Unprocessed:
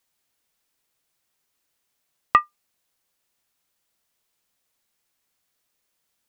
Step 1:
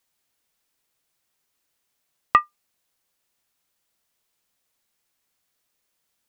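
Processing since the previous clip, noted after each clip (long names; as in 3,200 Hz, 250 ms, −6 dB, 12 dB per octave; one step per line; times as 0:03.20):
no processing that can be heard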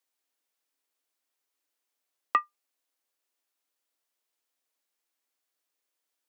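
elliptic high-pass filter 260 Hz
level −7.5 dB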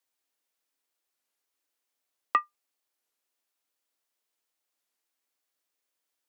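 wow of a warped record 33 1/3 rpm, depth 250 cents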